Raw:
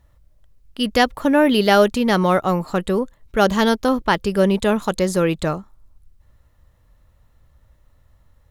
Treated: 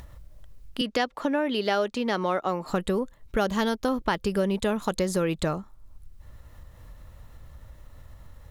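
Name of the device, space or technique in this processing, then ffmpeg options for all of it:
upward and downward compression: -filter_complex "[0:a]acompressor=mode=upward:threshold=-35dB:ratio=2.5,acompressor=threshold=-23dB:ratio=4,asettb=1/sr,asplit=3[a][b][c];[a]atrim=end=0.814[d];[b]atrim=start=0.81:end=2.66,asetpts=PTS-STARTPTS,afade=t=in:d=0.004:c=qsin,afade=t=out:st=1.846:d=0.004:c=qsin,acrossover=split=210 7400:gain=0.158 1 0.224[e][f][g];[e][f][g]amix=inputs=3:normalize=0[h];[c]atrim=start=2.656[i];[d][h]acrossfade=d=0.004:c1=hsin:c2=qsin[j];[j][i]acrossfade=d=0.004:c1=qsin:c2=hsin"

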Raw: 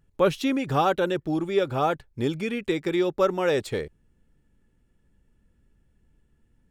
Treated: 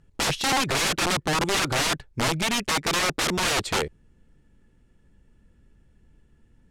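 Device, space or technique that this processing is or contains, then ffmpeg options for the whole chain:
overflowing digital effects unit: -af "aeval=exprs='(mod(15.8*val(0)+1,2)-1)/15.8':c=same,lowpass=9.3k,volume=6dB"

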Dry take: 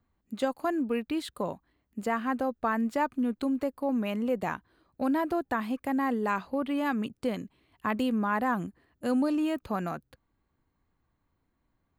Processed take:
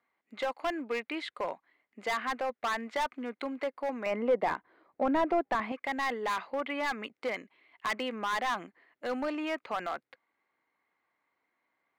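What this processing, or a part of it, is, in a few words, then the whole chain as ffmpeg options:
megaphone: -filter_complex "[0:a]highpass=550,lowpass=3.5k,equalizer=f=2.1k:t=o:w=0.27:g=11.5,asoftclip=type=hard:threshold=-29dB,asettb=1/sr,asplit=3[a][b][c];[a]atrim=end=4.064[d];[b]atrim=start=4.06:end=5.72,asetpts=PTS-STARTPTS,afade=t=in:d=0.004:c=qsin,afade=t=out:st=1.656:d=0.004:c=qsin,tiltshelf=f=1.5k:g=8[e];[c]atrim=start=5.716[f];[d][e]acrossfade=d=0.004:c1=hsin:c2=qsin[g];[g][f]acrossfade=d=0.004:c1=qsin:c2=hsin,volume=2.5dB"

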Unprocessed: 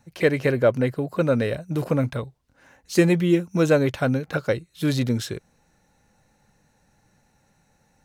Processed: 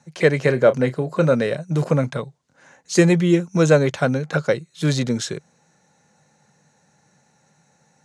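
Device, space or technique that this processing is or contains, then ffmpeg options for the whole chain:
car door speaker: -filter_complex "[0:a]highpass=190,highpass=81,equalizer=f=82:t=q:w=4:g=7,equalizer=f=150:t=q:w=4:g=9,equalizer=f=290:t=q:w=4:g=-5,equalizer=f=2.7k:t=q:w=4:g=-3,equalizer=f=6.7k:t=q:w=4:g=6,lowpass=f=9.3k:w=0.5412,lowpass=f=9.3k:w=1.3066,asettb=1/sr,asplit=3[a][b][c];[a]atrim=end=0.454[d];[b]atrim=start=0.45:end=1.35,asetpts=PTS-STARTPTS,afade=t=in:d=0.004:c=qsin,afade=t=out:st=0.896:d=0.004:c=qsin,asplit=2[e][f];[f]adelay=31,volume=-13dB[g];[e][g]amix=inputs=2:normalize=0,atrim=end_sample=39690[h];[c]atrim=start=1.346[i];[d][h]acrossfade=d=0.004:c1=hsin:c2=qsin[j];[j][i]acrossfade=d=0.004:c1=qsin:c2=hsin,volume=4dB"

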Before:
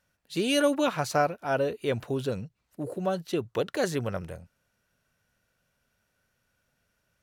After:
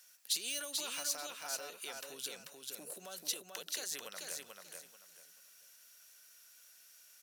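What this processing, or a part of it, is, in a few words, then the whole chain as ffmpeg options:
broadcast voice chain: -af "highpass=100,highpass=f=140:w=0.5412,highpass=f=140:w=1.3066,deesser=0.7,acompressor=threshold=-43dB:ratio=4,equalizer=f=5.8k:t=o:w=0.81:g=4,alimiter=level_in=11dB:limit=-24dB:level=0:latency=1:release=139,volume=-11dB,aderivative,aecho=1:1:438|876|1314:0.631|0.158|0.0394,volume=17dB"

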